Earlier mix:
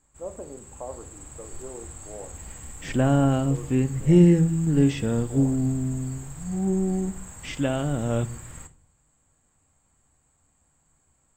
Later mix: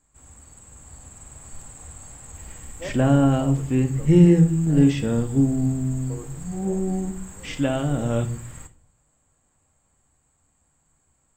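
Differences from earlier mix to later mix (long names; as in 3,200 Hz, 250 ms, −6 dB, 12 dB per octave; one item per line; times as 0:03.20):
speech: entry +2.60 s
second sound: send +8.0 dB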